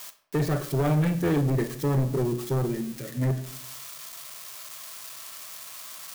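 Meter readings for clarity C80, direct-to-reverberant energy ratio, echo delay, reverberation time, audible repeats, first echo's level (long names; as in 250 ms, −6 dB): 16.0 dB, 11.5 dB, no echo audible, 0.75 s, no echo audible, no echo audible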